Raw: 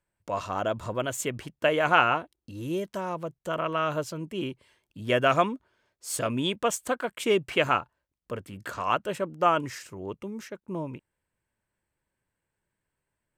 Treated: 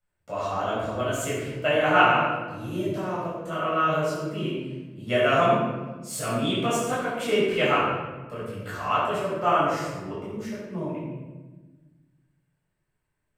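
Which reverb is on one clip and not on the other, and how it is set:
rectangular room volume 850 cubic metres, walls mixed, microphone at 6.9 metres
level −10.5 dB

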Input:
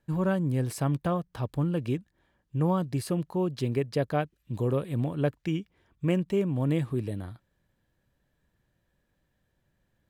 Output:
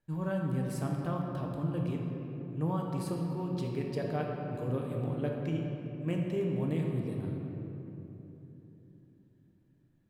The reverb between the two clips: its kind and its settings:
rectangular room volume 200 cubic metres, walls hard, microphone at 0.5 metres
level −9 dB

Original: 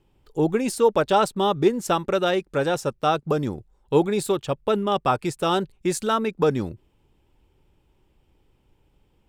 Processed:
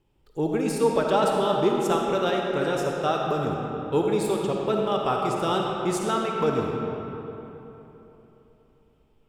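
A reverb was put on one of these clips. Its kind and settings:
comb and all-pass reverb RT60 3.5 s, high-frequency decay 0.6×, pre-delay 15 ms, DRR −0.5 dB
level −5 dB

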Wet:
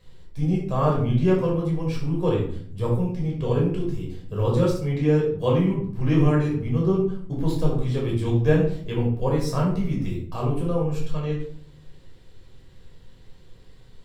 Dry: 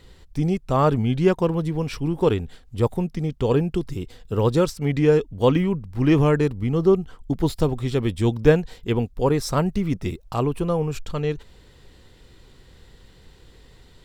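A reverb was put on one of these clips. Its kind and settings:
rectangular room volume 730 cubic metres, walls furnished, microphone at 5.5 metres
level −11.5 dB

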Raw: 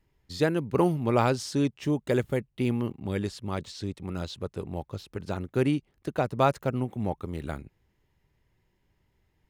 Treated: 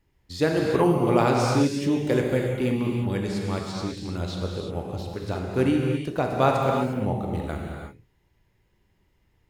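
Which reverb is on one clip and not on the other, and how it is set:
reverb whose tail is shaped and stops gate 380 ms flat, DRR −0.5 dB
level +1 dB

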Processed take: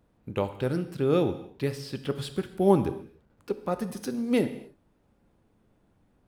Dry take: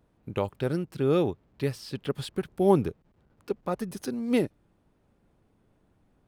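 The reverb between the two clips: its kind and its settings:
reverb whose tail is shaped and stops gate 310 ms falling, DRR 9 dB

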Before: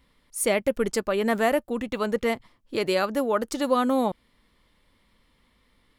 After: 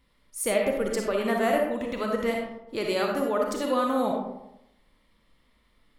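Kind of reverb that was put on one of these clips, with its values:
comb and all-pass reverb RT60 0.86 s, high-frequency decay 0.45×, pre-delay 15 ms, DRR 0 dB
level −4.5 dB

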